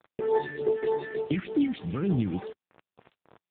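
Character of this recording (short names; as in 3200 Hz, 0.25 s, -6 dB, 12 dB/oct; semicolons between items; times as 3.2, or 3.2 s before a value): a buzz of ramps at a fixed pitch in blocks of 8 samples; phasing stages 4, 3.4 Hz, lowest notch 600–3100 Hz; a quantiser's noise floor 8-bit, dither none; AMR-NB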